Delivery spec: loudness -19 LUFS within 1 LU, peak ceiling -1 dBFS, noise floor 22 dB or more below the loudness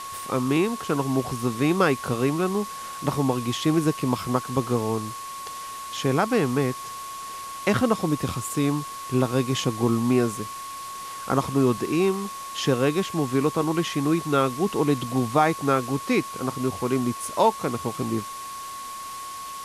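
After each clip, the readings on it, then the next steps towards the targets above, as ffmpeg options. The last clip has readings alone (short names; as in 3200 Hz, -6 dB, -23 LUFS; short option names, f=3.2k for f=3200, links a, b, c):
steady tone 1100 Hz; tone level -34 dBFS; noise floor -36 dBFS; noise floor target -47 dBFS; loudness -25.0 LUFS; peak -6.0 dBFS; loudness target -19.0 LUFS
-> -af "bandreject=f=1.1k:w=30"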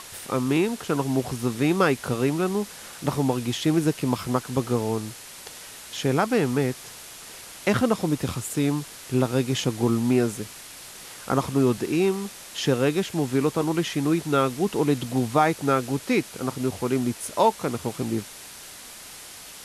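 steady tone none; noise floor -43 dBFS; noise floor target -47 dBFS
-> -af "afftdn=nr=6:nf=-43"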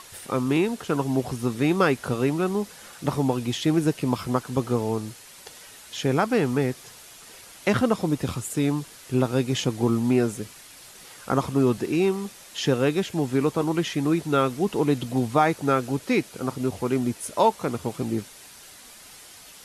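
noise floor -47 dBFS; loudness -25.0 LUFS; peak -6.0 dBFS; loudness target -19.0 LUFS
-> -af "volume=6dB,alimiter=limit=-1dB:level=0:latency=1"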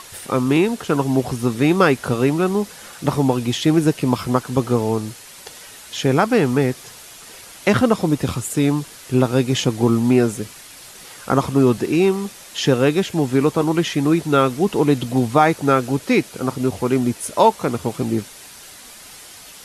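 loudness -19.0 LUFS; peak -1.0 dBFS; noise floor -41 dBFS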